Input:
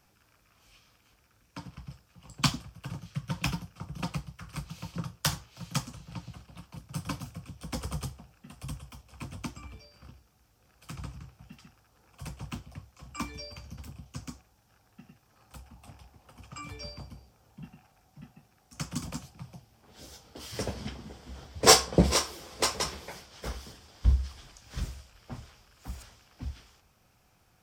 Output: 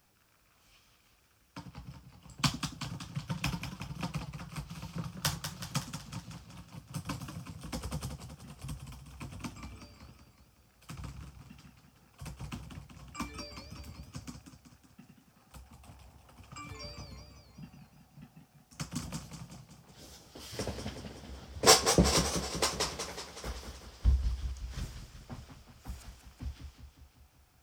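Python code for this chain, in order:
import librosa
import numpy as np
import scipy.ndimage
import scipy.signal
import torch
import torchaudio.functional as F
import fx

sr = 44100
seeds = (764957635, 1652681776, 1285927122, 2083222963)

y = fx.quant_dither(x, sr, seeds[0], bits=12, dither='triangular')
y = fx.echo_warbled(y, sr, ms=187, feedback_pct=60, rate_hz=2.8, cents=160, wet_db=-8)
y = F.gain(torch.from_numpy(y), -3.5).numpy()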